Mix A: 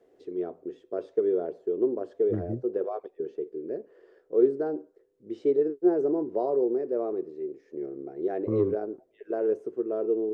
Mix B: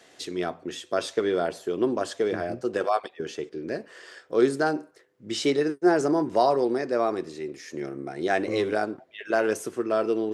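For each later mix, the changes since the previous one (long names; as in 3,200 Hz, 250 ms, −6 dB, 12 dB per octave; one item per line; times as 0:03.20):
first voice: remove resonant band-pass 420 Hz, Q 3.3
master: add high-pass filter 290 Hz 6 dB per octave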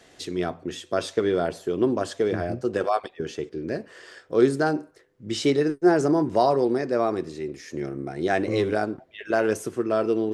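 master: remove high-pass filter 290 Hz 6 dB per octave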